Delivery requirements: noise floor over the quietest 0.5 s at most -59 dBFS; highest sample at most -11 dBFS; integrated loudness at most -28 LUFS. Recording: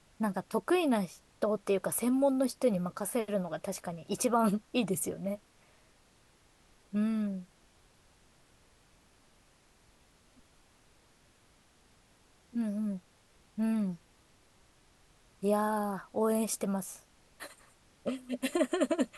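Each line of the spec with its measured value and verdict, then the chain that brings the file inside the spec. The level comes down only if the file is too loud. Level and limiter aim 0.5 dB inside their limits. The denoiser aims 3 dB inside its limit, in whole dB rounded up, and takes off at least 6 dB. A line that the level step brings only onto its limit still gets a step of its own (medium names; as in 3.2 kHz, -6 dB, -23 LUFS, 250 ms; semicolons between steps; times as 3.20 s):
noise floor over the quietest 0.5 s -65 dBFS: pass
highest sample -16.0 dBFS: pass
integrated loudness -32.5 LUFS: pass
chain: none needed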